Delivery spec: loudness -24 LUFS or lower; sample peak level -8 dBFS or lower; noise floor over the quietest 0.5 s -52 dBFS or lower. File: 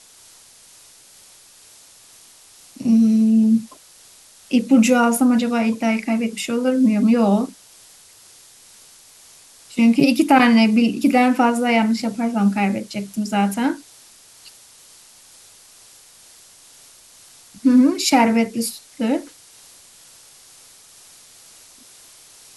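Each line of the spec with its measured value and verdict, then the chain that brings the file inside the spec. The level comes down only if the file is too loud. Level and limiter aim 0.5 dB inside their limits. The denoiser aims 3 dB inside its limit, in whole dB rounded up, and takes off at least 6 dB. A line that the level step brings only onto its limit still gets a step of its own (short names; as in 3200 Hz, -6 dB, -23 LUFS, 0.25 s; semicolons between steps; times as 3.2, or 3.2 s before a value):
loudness -17.5 LUFS: fail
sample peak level -3.0 dBFS: fail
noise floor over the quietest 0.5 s -48 dBFS: fail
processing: gain -7 dB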